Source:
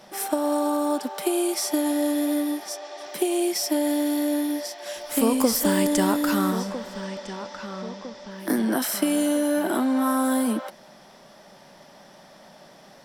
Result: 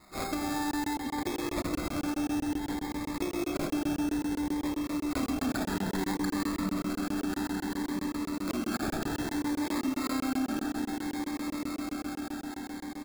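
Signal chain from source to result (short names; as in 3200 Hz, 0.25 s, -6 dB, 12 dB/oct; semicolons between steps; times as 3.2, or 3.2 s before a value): fixed phaser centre 1200 Hz, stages 4; comb 2.5 ms, depth 47%; swelling echo 0.136 s, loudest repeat 8, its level -18 dB; sample-and-hold 15×; on a send at -5 dB: tilt shelf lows +7 dB, about 1400 Hz + reverb, pre-delay 3 ms; on the sum: compressor, threshold -24 dBFS, peak gain reduction 6.5 dB; crackling interface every 0.13 s, samples 1024, zero, from 0.71; cascading phaser rising 0.6 Hz; gain -2 dB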